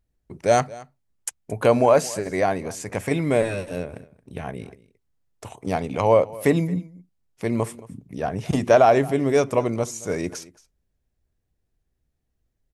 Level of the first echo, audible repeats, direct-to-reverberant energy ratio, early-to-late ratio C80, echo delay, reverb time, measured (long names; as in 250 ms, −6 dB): −20.5 dB, 1, no reverb audible, no reverb audible, 223 ms, no reverb audible